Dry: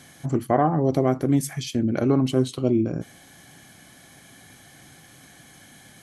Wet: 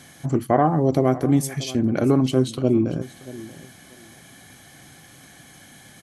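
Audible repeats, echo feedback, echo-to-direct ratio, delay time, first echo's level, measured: 2, 20%, -18.0 dB, 633 ms, -18.0 dB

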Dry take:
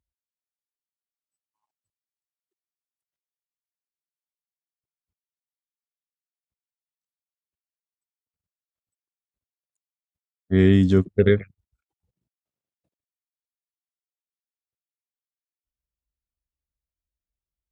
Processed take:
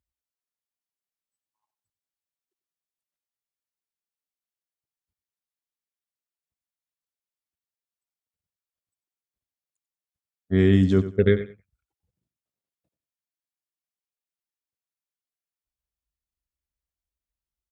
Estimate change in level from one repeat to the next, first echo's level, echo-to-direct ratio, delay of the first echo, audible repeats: -13.5 dB, -13.5 dB, -13.5 dB, 93 ms, 2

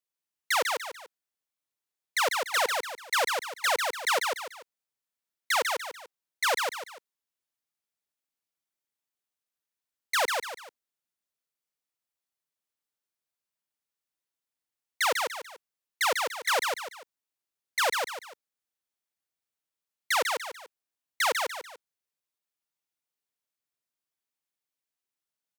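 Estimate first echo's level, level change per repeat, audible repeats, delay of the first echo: -4.0 dB, -9.0 dB, 3, 146 ms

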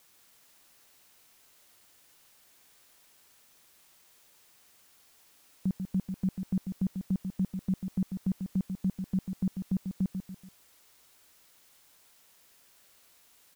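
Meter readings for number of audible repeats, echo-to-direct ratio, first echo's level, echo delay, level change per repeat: 3, -6.0 dB, -7.0 dB, 143 ms, -7.5 dB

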